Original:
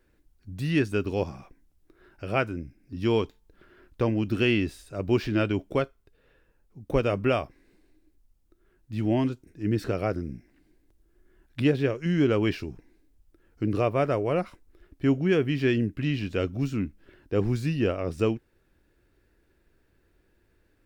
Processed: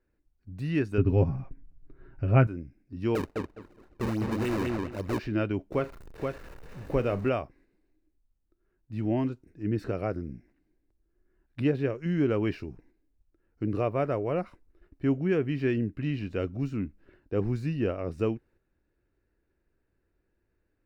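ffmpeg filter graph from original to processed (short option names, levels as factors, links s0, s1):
-filter_complex "[0:a]asettb=1/sr,asplit=3[s0][s1][s2];[s0]atrim=end=0.984[s3];[s1]atrim=start=0.98:end=2.47,asetpts=PTS-STARTPTS,afade=t=in:d=0.004:c=qsin,afade=t=out:st=1.486:d=0.004:c=qsin,bass=f=250:g=14,treble=f=4000:g=-11,aecho=1:1:7.4:0.57,atrim=end_sample=65709[s4];[s2]atrim=start=2.466[s5];[s3][s4]acrossfade=d=0.004:c1=hsin:c2=qsin[s6];[s6][s5]acrossfade=d=0.004:c1=qsin:c2=hsin,asettb=1/sr,asplit=3[s7][s8][s9];[s7]atrim=end=3.154[s10];[s8]atrim=start=3.15:end=5.19,asetpts=PTS-STARTPTS,afade=t=in:d=0.004:c=qsin,afade=t=out:st=2.036:d=0.004:c=qsin,acrusher=samples=37:mix=1:aa=0.000001:lfo=1:lforange=59.2:lforate=3.6,asplit=2[s11][s12];[s12]adelay=206,lowpass=f=4000:p=1,volume=0.668,asplit=2[s13][s14];[s14]adelay=206,lowpass=f=4000:p=1,volume=0.19,asplit=2[s15][s16];[s16]adelay=206,lowpass=f=4000:p=1,volume=0.19[s17];[s11][s13][s15][s17]amix=inputs=4:normalize=0,atrim=end_sample=89964,volume=11.9,asoftclip=hard,volume=0.0841[s18];[s9]atrim=start=5.186[s19];[s10][s18]acrossfade=d=0.004:c1=hsin:c2=qsin[s20];[s20][s19]acrossfade=d=0.004:c1=qsin:c2=hsin,asettb=1/sr,asplit=3[s21][s22][s23];[s21]atrim=end=5.724[s24];[s22]atrim=start=5.72:end=7.29,asetpts=PTS-STARTPTS,afade=t=in:d=0.004:c=qsin,afade=t=out:st=1.566:d=0.004:c=qsin,aeval=exprs='val(0)+0.5*0.0133*sgn(val(0))':c=same,aecho=1:1:40|476:0.188|0.631,atrim=end_sample=69237[s25];[s23]atrim=start=7.286[s26];[s24][s25]acrossfade=d=0.004:c1=hsin:c2=qsin[s27];[s27][s26]acrossfade=d=0.004:c1=qsin:c2=hsin,highshelf=f=3500:g=-11,bandreject=f=3300:w=8.7,agate=range=0.501:threshold=0.00178:ratio=16:detection=peak,volume=0.708"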